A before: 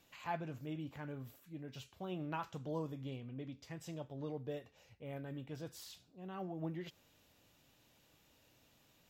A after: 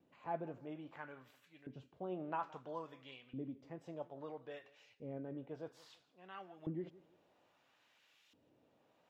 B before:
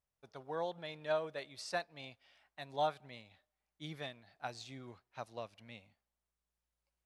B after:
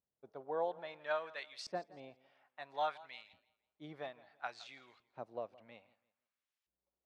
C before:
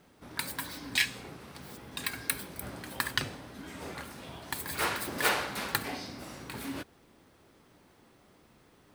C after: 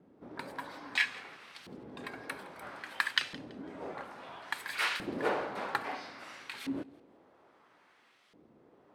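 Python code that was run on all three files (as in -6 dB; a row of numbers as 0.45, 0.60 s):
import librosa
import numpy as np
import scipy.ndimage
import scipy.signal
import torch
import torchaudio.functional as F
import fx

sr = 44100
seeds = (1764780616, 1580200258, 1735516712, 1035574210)

y = fx.wow_flutter(x, sr, seeds[0], rate_hz=2.1, depth_cents=26.0)
y = fx.filter_lfo_bandpass(y, sr, shape='saw_up', hz=0.6, low_hz=260.0, high_hz=3300.0, q=1.0)
y = fx.echo_warbled(y, sr, ms=166, feedback_pct=30, rate_hz=2.8, cents=84, wet_db=-20.5)
y = F.gain(torch.from_numpy(y), 3.5).numpy()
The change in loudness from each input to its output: -2.0, -1.0, -2.5 LU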